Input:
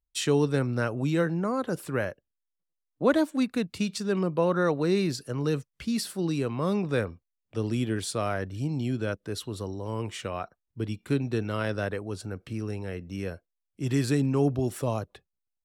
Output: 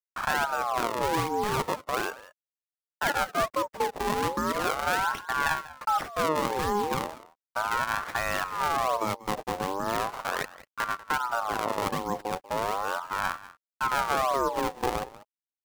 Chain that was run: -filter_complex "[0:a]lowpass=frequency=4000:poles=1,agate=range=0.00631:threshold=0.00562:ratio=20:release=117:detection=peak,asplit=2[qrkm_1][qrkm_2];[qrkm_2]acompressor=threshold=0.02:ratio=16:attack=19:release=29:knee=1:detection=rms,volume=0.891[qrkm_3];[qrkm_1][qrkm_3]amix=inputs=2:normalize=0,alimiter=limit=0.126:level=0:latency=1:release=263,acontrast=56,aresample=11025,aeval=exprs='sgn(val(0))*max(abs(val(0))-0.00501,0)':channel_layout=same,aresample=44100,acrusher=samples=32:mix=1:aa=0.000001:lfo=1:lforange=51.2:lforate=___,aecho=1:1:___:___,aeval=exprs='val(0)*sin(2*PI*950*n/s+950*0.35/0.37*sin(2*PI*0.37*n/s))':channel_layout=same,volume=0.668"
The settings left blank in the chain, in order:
1.3, 192, 0.126